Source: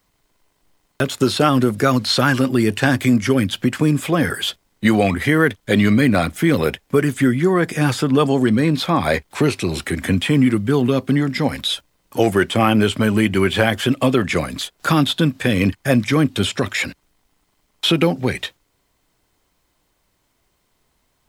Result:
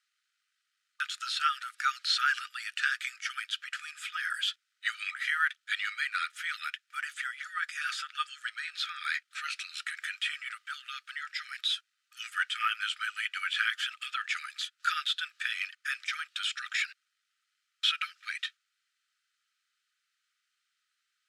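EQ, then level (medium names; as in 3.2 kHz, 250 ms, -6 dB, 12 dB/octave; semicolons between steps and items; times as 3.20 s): brick-wall FIR high-pass 1.2 kHz; distance through air 67 m; band-stop 2.1 kHz, Q 15; -6.5 dB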